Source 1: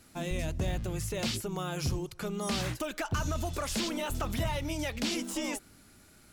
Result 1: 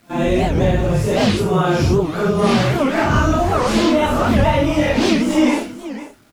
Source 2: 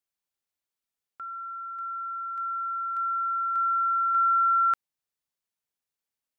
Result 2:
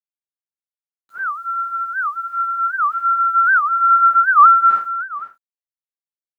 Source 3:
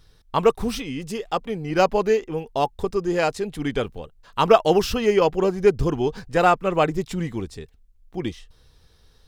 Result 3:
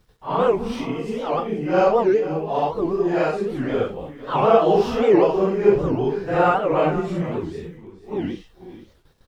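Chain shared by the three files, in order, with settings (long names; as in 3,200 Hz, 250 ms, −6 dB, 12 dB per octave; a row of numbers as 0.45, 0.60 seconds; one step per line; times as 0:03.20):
random phases in long frames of 200 ms
low-pass filter 1,200 Hz 6 dB per octave
noise gate −54 dBFS, range −13 dB
low-shelf EQ 110 Hz −11 dB
in parallel at −3 dB: downward compressor 12 to 1, threshold −32 dBFS
on the sum: bit reduction 12 bits
single-tap delay 488 ms −14.5 dB
wow of a warped record 78 rpm, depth 250 cents
normalise the peak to −3 dBFS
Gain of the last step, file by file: +17.0, +12.0, +2.0 decibels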